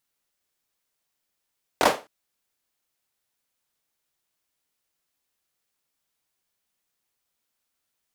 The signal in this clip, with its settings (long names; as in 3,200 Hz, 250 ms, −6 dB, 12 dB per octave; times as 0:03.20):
synth clap length 0.26 s, bursts 3, apart 22 ms, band 620 Hz, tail 0.28 s